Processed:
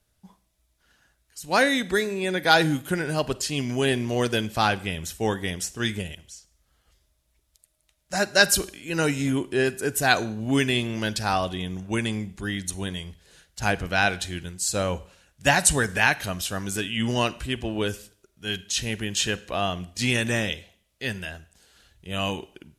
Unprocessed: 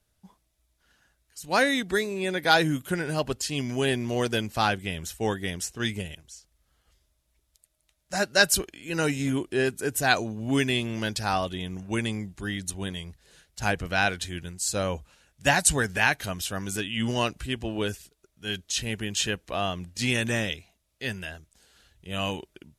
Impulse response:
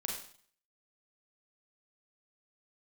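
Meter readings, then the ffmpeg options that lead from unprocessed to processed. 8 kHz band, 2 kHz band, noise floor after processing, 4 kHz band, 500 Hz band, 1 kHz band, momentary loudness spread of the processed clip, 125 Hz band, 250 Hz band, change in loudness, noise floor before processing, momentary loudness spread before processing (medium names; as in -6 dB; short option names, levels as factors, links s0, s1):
+2.0 dB, +2.0 dB, -71 dBFS, +2.0 dB, +2.0 dB, +2.0 dB, 13 LU, +2.0 dB, +2.0 dB, +2.0 dB, -74 dBFS, 13 LU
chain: -filter_complex "[0:a]asplit=2[s0][s1];[1:a]atrim=start_sample=2205[s2];[s1][s2]afir=irnorm=-1:irlink=0,volume=0.178[s3];[s0][s3]amix=inputs=2:normalize=0,volume=1.12"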